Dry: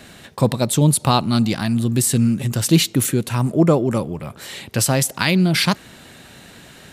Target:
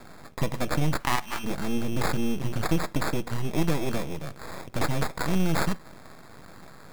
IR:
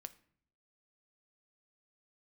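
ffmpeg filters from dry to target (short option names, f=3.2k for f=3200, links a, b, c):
-filter_complex "[0:a]acrusher=samples=15:mix=1:aa=0.000001,acompressor=threshold=-16dB:ratio=6,asplit=3[a][b][c];[a]afade=t=out:st=0.99:d=0.02[d];[b]lowshelf=f=620:t=q:w=3:g=-14,afade=t=in:st=0.99:d=0.02,afade=t=out:st=1.43:d=0.02[e];[c]afade=t=in:st=1.43:d=0.02[f];[d][e][f]amix=inputs=3:normalize=0,aeval=exprs='max(val(0),0)':c=same,asplit=2[g][h];[1:a]atrim=start_sample=2205,atrim=end_sample=3528[i];[h][i]afir=irnorm=-1:irlink=0,volume=8dB[j];[g][j]amix=inputs=2:normalize=0,volume=-8.5dB"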